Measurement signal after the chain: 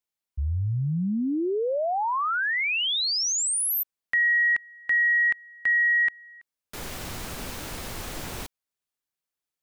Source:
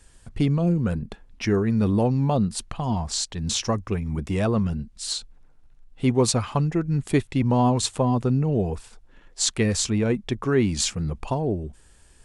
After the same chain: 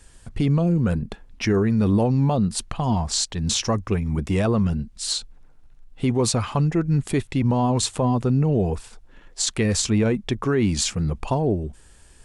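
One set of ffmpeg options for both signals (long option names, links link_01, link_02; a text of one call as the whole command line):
ffmpeg -i in.wav -af "alimiter=limit=-16dB:level=0:latency=1:release=40,volume=3.5dB" out.wav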